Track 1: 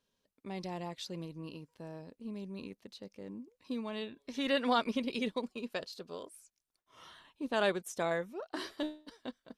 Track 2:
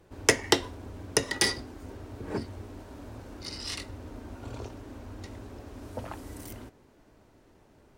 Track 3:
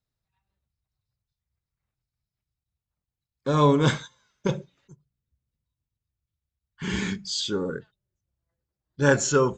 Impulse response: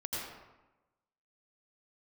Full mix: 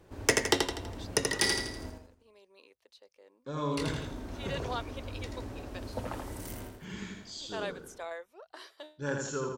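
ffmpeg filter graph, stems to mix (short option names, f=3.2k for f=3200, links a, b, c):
-filter_complex "[0:a]highpass=f=450:w=0.5412,highpass=f=450:w=1.3066,volume=-6.5dB[a];[1:a]volume=0.5dB,asplit=3[b][c][d];[b]atrim=end=1.9,asetpts=PTS-STARTPTS,afade=t=out:st=1.896:d=0.004:c=hsin[e];[c]atrim=start=1.9:end=3.77,asetpts=PTS-STARTPTS,volume=0[f];[d]atrim=start=3.77,asetpts=PTS-STARTPTS,afade=t=in:d=0.004:c=hsin[g];[e][f][g]concat=n=3:v=0:a=1,asplit=2[h][i];[i]volume=-5dB[j];[2:a]volume=-15dB,asplit=2[k][l];[l]volume=-4dB[m];[j][m]amix=inputs=2:normalize=0,aecho=0:1:82|164|246|328|410|492:1|0.43|0.185|0.0795|0.0342|0.0147[n];[a][h][k][n]amix=inputs=4:normalize=0,volume=7.5dB,asoftclip=hard,volume=-7.5dB,alimiter=limit=-11.5dB:level=0:latency=1:release=392"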